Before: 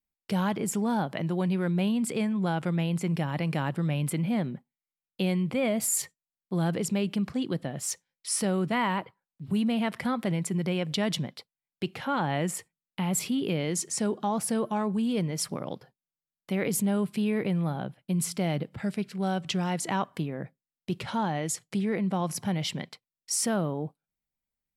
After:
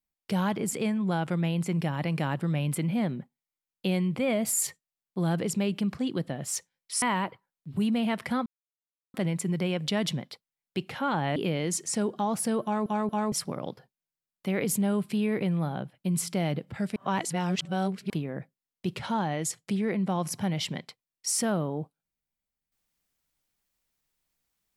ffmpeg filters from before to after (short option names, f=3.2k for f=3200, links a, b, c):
-filter_complex "[0:a]asplit=10[a][b][c][d][e][f][g][h][i][j];[a]atrim=end=0.732[k];[b]atrim=start=2.078:end=8.372[l];[c]atrim=start=8.758:end=10.2,asetpts=PTS-STARTPTS,afade=t=out:st=1.438:d=0.004:c=hsin,apad=pad_dur=0.68[m];[d]atrim=start=10.2:end=12.422,asetpts=PTS-STARTPTS,afade=t=in:d=0.004:c=hsin[n];[e]atrim=start=13.398:end=14.902[o];[f]atrim=start=14.668:end=14.902[p];[g]atrim=start=14.668:end=14.902[q];[h]atrim=start=15.358:end=19.002[r];[i]atrim=start=18.998:end=20.142,asetpts=PTS-STARTPTS,areverse[s];[j]atrim=start=20.138[t];[k][l]acrossfade=d=0.004:c1=hsin:c2=hsin[u];[m][n]concat=n=2:v=0:a=1[v];[u][v]acrossfade=d=0.004:c1=hsin:c2=hsin[w];[w][o]acrossfade=d=0.004:c1=hsin:c2=hsin[x];[x][p]acrossfade=d=0.004:c1=hsin:c2=hsin[y];[y][q]acrossfade=d=0.004:c1=hsin:c2=hsin[z];[z][r]acrossfade=d=0.004:c1=hsin:c2=hsin[aa];[aa][s]acrossfade=d=0.004:c1=hsin:c2=hsin[ab];[ab][t]acrossfade=d=0.004:c1=hsin:c2=hsin"